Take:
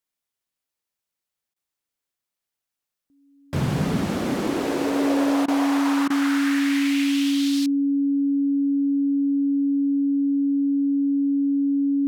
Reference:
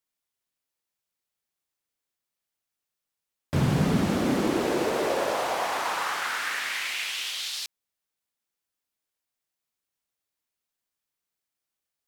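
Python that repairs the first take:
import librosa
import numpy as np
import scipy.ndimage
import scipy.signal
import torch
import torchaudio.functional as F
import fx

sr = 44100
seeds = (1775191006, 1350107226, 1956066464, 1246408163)

y = fx.notch(x, sr, hz=280.0, q=30.0)
y = fx.fix_interpolate(y, sr, at_s=(1.54, 5.46, 6.08), length_ms=20.0)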